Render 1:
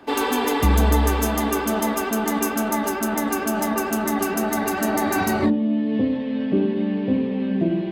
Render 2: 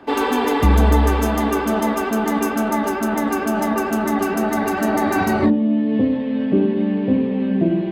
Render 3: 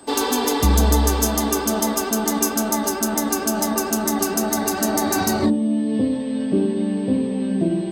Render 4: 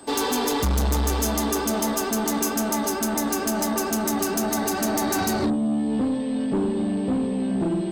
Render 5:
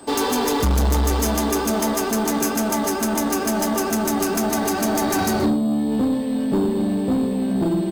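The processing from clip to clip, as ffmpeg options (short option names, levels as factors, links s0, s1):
-af "highshelf=f=4100:g=-10,volume=1.5"
-af "highshelf=f=3500:t=q:w=1.5:g=12.5,aeval=exprs='val(0)+0.00501*sin(2*PI*8200*n/s)':c=same,volume=0.75"
-af "asoftclip=type=tanh:threshold=0.119"
-filter_complex "[0:a]asplit=2[s0][s1];[s1]acrusher=samples=11:mix=1:aa=0.000001,volume=0.355[s2];[s0][s2]amix=inputs=2:normalize=0,aecho=1:1:125:0.133,volume=1.12"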